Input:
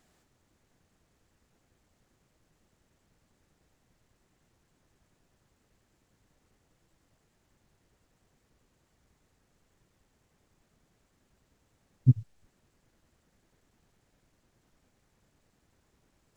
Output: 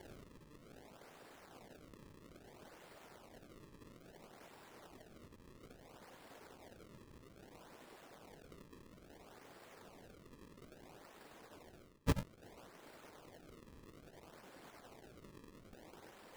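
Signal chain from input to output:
reversed playback
downward compressor 16 to 1, threshold −32 dBFS, peak gain reduction 18.5 dB
reversed playback
high-pass filter 480 Hz 12 dB per octave
spectral tilt −2 dB per octave
random phases in short frames
sample-and-hold swept by an LFO 34×, swing 160% 0.6 Hz
level +18 dB

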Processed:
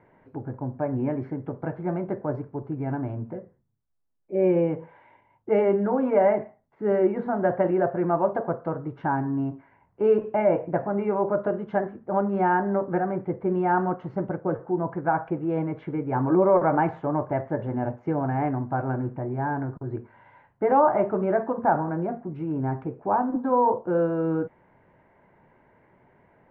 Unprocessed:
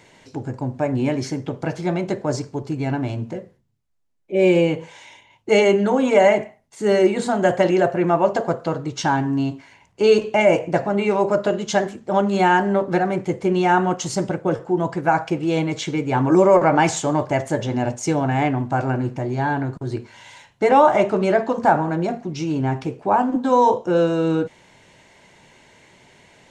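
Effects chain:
low-pass filter 1,600 Hz 24 dB per octave
level −5.5 dB

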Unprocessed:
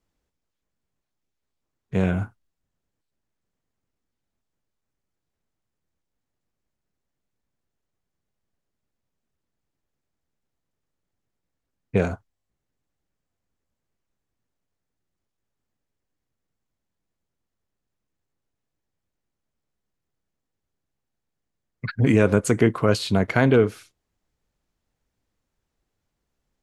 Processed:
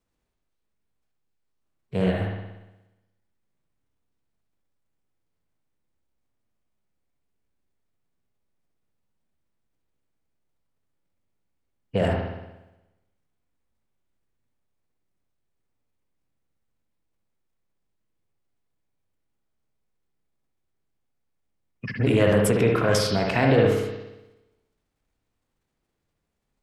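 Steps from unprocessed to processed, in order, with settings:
transient designer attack 0 dB, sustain +7 dB
spring reverb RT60 1 s, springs 59 ms, chirp 20 ms, DRR 0.5 dB
formants moved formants +3 semitones
level −4 dB

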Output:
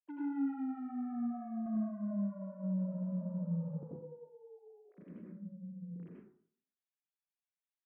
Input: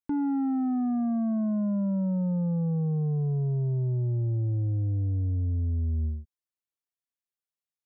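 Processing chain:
three sine waves on the formant tracks
0:01.66–0:04.17: low-shelf EQ 440 Hz +10.5 dB
0:04.68–0:05.83: gain on a spectral selection 370–910 Hz −7 dB
spectral tilt +4.5 dB per octave
downward compressor, threshold −30 dBFS, peak gain reduction 6.5 dB
soft clipping −32 dBFS, distortion −17 dB
dense smooth reverb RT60 0.56 s, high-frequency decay 0.5×, pre-delay 75 ms, DRR −4.5 dB
level −8.5 dB

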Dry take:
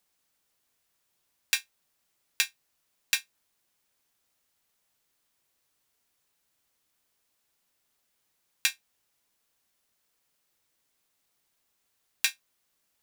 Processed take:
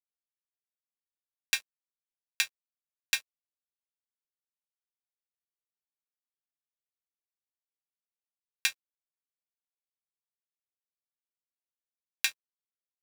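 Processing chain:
high-shelf EQ 5,800 Hz −4.5 dB
dead-zone distortion −50.5 dBFS

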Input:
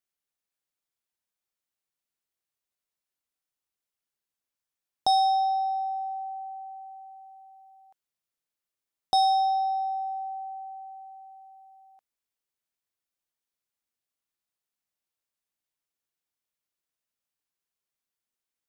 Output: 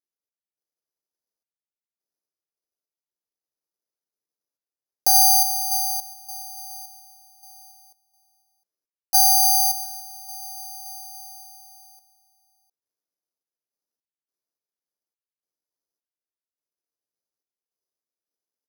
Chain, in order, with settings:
stylus tracing distortion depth 0.055 ms
low-pass filter 1,900 Hz 24 dB per octave
parametric band 420 Hz +13.5 dB 1.9 octaves
sample-and-hold tremolo, depth 85%
single-tap delay 707 ms −20 dB
bad sample-rate conversion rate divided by 8×, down none, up zero stuff
level −8 dB

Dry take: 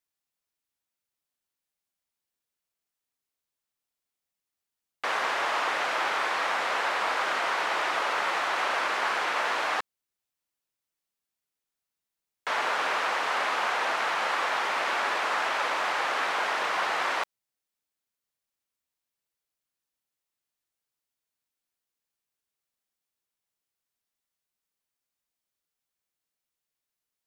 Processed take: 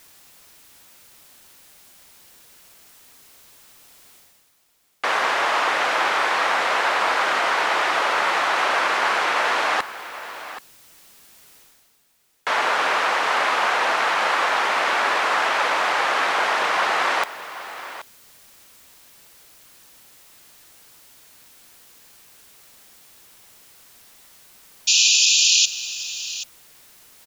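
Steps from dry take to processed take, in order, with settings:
reversed playback
upward compression, threshold −33 dBFS
reversed playback
sound drawn into the spectrogram noise, 0:24.87–0:25.66, 2,400–7,300 Hz −23 dBFS
single-tap delay 779 ms −14 dB
level +7 dB

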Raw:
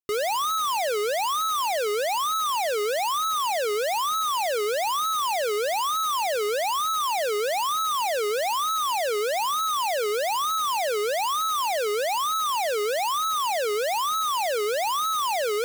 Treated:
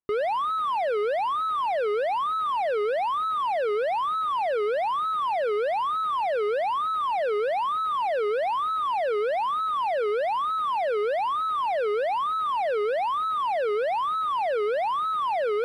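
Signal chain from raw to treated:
low-pass filter 1,600 Hz 12 dB per octave
in parallel at −6 dB: soft clipping −39 dBFS, distortion −11 dB

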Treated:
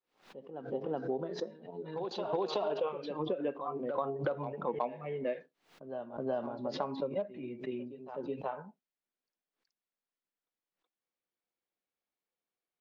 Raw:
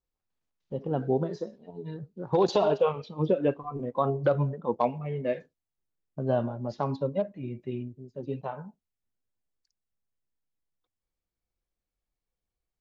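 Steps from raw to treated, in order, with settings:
three-way crossover with the lows and the highs turned down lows −24 dB, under 170 Hz, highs −18 dB, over 4,500 Hz
on a send: backwards echo 373 ms −13 dB
on the sum: downward compressor 4 to 1, threshold −30 dBFS, peak gain reduction 10 dB
low-shelf EQ 210 Hz −7 dB
background raised ahead of every attack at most 140 dB per second

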